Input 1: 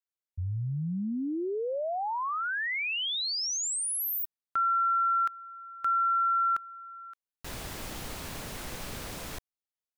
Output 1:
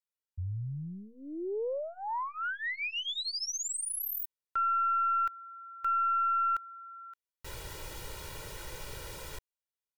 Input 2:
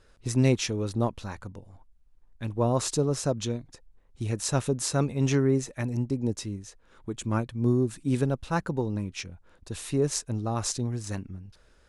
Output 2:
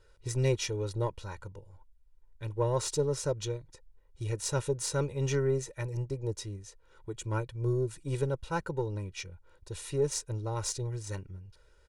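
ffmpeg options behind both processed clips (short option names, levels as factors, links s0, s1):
-af "aeval=exprs='0.376*(cos(1*acos(clip(val(0)/0.376,-1,1)))-cos(1*PI/2))+0.0075*(cos(8*acos(clip(val(0)/0.376,-1,1)))-cos(8*PI/2))':c=same,aecho=1:1:2.1:0.96,volume=0.447"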